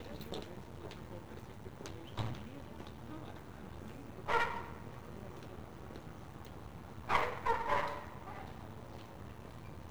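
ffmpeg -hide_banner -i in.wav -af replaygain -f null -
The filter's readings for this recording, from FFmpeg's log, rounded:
track_gain = +18.9 dB
track_peak = 0.147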